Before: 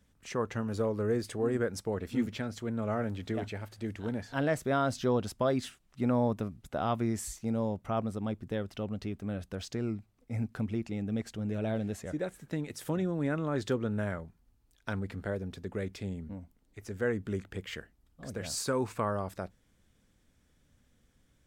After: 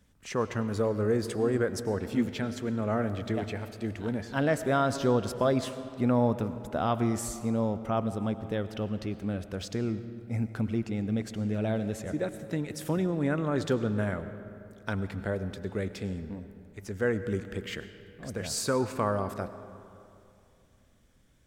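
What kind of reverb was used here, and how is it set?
comb and all-pass reverb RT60 2.7 s, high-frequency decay 0.55×, pre-delay 60 ms, DRR 11.5 dB
level +3 dB

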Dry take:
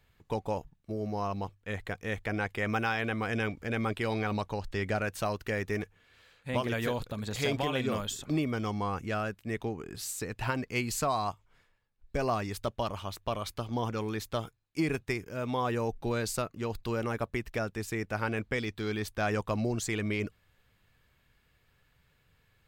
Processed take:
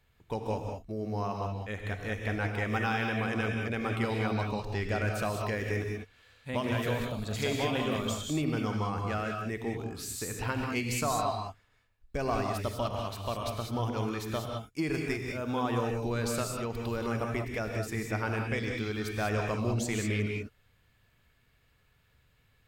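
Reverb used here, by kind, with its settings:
reverb whose tail is shaped and stops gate 220 ms rising, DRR 1.5 dB
level −2 dB

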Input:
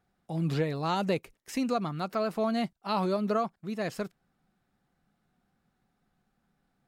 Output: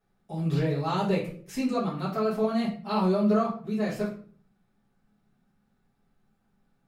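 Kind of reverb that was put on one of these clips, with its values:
rectangular room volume 42 cubic metres, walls mixed, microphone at 1.6 metres
level −8.5 dB

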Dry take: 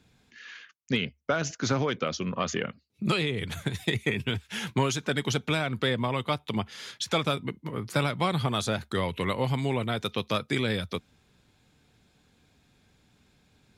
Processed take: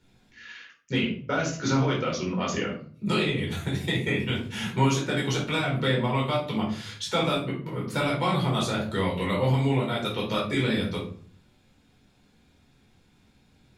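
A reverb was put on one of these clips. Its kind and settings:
rectangular room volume 420 cubic metres, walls furnished, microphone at 4.5 metres
level −6 dB

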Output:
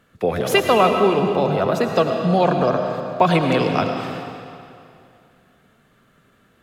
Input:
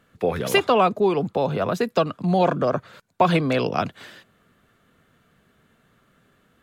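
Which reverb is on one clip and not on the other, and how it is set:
comb and all-pass reverb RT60 2.5 s, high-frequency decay 0.9×, pre-delay 60 ms, DRR 3.5 dB
level +2 dB

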